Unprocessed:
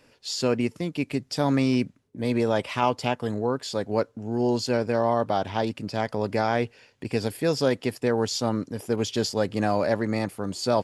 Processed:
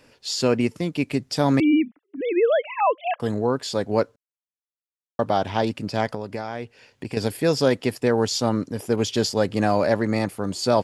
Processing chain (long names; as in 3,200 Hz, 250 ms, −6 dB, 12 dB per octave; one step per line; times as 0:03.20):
0:01.60–0:03.20: three sine waves on the formant tracks
0:04.16–0:05.19: silence
0:06.14–0:07.17: downward compressor 5 to 1, threshold −31 dBFS, peak gain reduction 11.5 dB
level +3.5 dB